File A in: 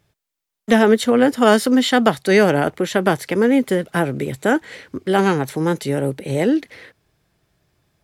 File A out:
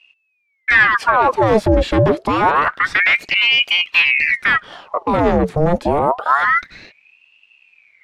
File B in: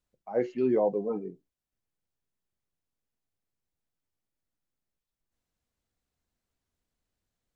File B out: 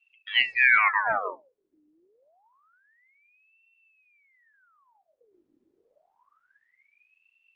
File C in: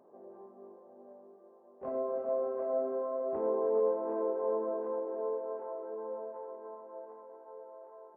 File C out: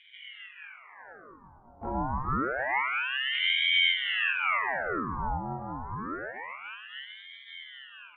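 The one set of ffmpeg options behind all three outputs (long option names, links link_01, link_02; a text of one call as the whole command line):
ffmpeg -i in.wav -af "apsyclip=17dB,aemphasis=mode=reproduction:type=riaa,aeval=exprs='val(0)*sin(2*PI*1500*n/s+1500*0.8/0.27*sin(2*PI*0.27*n/s))':channel_layout=same,volume=-13dB" out.wav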